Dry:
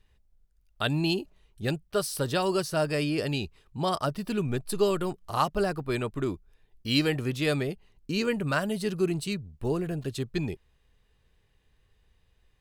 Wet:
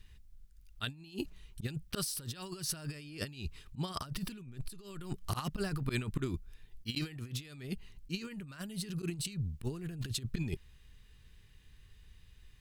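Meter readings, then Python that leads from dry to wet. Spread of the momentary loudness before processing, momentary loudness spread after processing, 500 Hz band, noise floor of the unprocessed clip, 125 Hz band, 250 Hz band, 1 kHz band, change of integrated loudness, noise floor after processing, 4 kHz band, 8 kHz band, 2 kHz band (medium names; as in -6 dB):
7 LU, 9 LU, -17.5 dB, -68 dBFS, -6.5 dB, -11.0 dB, -15.0 dB, -10.5 dB, -60 dBFS, -8.0 dB, -2.5 dB, -12.0 dB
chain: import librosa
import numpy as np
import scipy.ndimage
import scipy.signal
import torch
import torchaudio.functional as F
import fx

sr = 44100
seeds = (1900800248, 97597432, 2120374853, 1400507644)

y = fx.peak_eq(x, sr, hz=620.0, db=-14.5, octaves=1.7)
y = fx.auto_swell(y, sr, attack_ms=159.0)
y = fx.over_compress(y, sr, threshold_db=-40.0, ratio=-0.5)
y = F.gain(torch.from_numpy(y), 2.5).numpy()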